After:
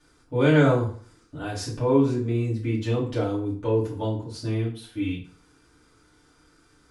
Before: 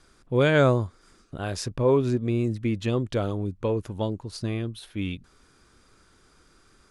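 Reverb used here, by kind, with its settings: FDN reverb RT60 0.47 s, low-frequency decay 1×, high-frequency decay 0.8×, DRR -8 dB; gain -9 dB

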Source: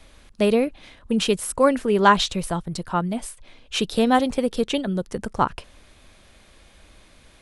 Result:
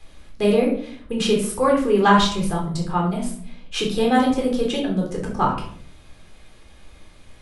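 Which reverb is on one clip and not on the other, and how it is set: shoebox room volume 690 m³, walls furnished, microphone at 3.9 m; gain -4.5 dB

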